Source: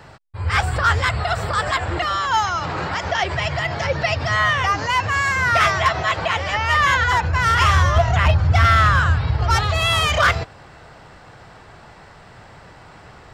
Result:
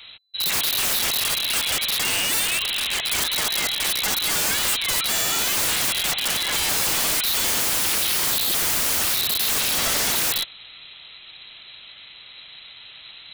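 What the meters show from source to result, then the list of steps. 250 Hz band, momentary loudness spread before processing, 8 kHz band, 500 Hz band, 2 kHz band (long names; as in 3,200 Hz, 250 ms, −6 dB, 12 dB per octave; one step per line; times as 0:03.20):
−5.0 dB, 8 LU, +13.5 dB, −10.0 dB, −7.5 dB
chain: voice inversion scrambler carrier 4,000 Hz
wrap-around overflow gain 17 dB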